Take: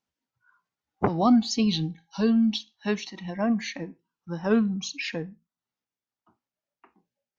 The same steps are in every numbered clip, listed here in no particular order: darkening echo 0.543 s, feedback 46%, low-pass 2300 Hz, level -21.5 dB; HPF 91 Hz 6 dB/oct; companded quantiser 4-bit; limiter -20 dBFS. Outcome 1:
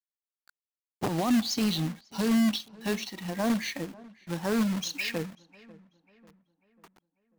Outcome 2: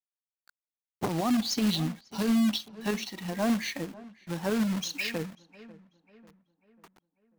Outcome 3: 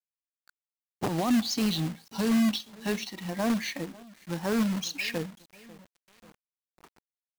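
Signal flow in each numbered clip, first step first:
HPF > limiter > companded quantiser > darkening echo; HPF > companded quantiser > darkening echo > limiter; HPF > limiter > darkening echo > companded quantiser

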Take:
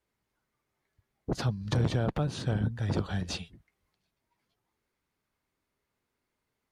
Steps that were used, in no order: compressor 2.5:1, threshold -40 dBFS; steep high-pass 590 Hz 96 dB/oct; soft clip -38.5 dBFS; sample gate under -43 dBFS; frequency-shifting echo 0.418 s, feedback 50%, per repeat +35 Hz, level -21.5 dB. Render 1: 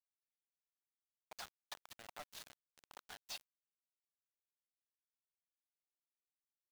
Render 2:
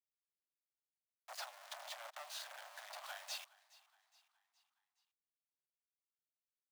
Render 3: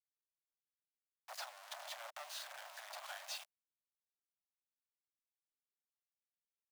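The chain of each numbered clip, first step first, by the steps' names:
frequency-shifting echo > compressor > steep high-pass > sample gate > soft clip; sample gate > soft clip > compressor > steep high-pass > frequency-shifting echo; soft clip > frequency-shifting echo > sample gate > steep high-pass > compressor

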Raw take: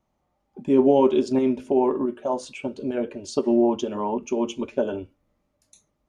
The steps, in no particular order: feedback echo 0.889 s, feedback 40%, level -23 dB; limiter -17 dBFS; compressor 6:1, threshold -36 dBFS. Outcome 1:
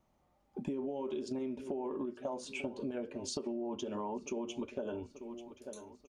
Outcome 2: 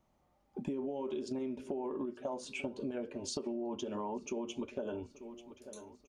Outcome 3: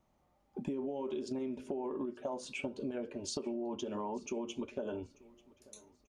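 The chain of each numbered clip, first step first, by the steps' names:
feedback echo > limiter > compressor; limiter > feedback echo > compressor; limiter > compressor > feedback echo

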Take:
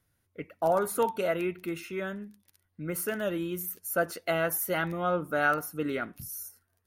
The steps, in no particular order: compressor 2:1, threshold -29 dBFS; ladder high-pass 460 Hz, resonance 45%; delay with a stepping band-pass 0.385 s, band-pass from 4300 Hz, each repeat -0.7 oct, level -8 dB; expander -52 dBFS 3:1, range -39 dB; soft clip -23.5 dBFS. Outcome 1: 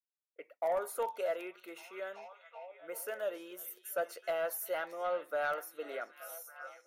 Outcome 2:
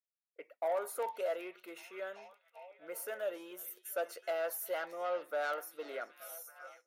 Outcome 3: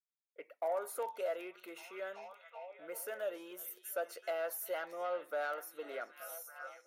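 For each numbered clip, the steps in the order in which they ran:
ladder high-pass > expander > delay with a stepping band-pass > soft clip > compressor; soft clip > ladder high-pass > compressor > delay with a stepping band-pass > expander; expander > delay with a stepping band-pass > compressor > soft clip > ladder high-pass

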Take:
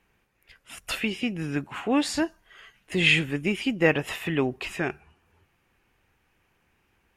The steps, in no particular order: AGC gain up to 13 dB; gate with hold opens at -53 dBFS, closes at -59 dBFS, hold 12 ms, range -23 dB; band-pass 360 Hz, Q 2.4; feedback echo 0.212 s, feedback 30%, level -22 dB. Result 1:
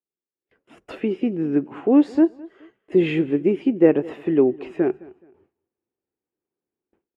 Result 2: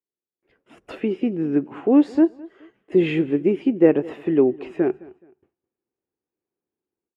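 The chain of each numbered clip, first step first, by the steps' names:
band-pass > AGC > gate with hold > feedback echo; gate with hold > band-pass > AGC > feedback echo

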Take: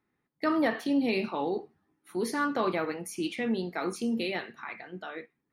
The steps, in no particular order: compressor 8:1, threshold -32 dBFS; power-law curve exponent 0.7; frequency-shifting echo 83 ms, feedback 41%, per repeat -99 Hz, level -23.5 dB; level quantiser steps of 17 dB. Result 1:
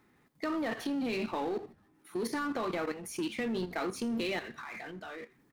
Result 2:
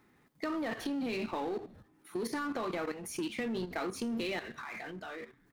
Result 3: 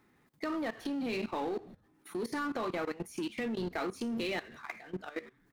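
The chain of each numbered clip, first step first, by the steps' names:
level quantiser > compressor > power-law curve > frequency-shifting echo; frequency-shifting echo > level quantiser > power-law curve > compressor; frequency-shifting echo > compressor > power-law curve > level quantiser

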